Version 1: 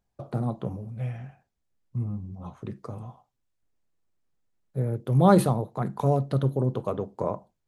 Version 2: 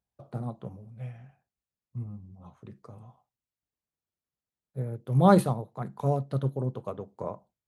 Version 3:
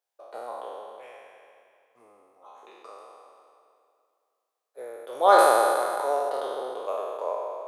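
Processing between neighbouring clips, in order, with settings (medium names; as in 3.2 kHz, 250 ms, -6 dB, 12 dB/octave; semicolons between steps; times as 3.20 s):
high-pass 49 Hz; peaking EQ 320 Hz -2.5 dB; upward expansion 1.5:1, over -34 dBFS
spectral sustain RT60 2.21 s; inverse Chebyshev high-pass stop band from 180 Hz, stop band 50 dB; filtered feedback delay 332 ms, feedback 38%, low-pass 4.6 kHz, level -16 dB; trim +3 dB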